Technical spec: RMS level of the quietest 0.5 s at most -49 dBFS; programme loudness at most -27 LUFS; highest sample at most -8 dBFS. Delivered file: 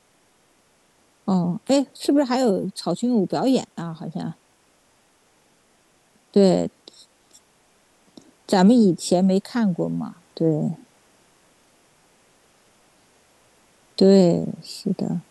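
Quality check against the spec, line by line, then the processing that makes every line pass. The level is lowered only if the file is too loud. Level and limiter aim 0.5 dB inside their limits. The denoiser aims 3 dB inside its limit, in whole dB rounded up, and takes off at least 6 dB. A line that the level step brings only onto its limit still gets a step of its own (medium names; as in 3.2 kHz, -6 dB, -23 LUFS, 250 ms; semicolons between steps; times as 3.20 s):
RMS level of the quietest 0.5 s -61 dBFS: pass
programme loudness -21.0 LUFS: fail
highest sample -4.5 dBFS: fail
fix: trim -6.5 dB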